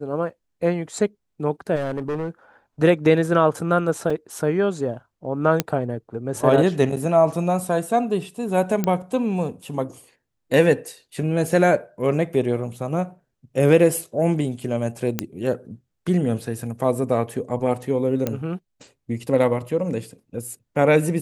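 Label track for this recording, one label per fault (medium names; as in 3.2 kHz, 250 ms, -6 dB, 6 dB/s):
1.750000	2.280000	clipped -22 dBFS
4.100000	4.100000	dropout 3.9 ms
5.600000	5.600000	pop -4 dBFS
8.840000	8.840000	pop -9 dBFS
15.190000	15.190000	pop -6 dBFS
18.270000	18.270000	pop -10 dBFS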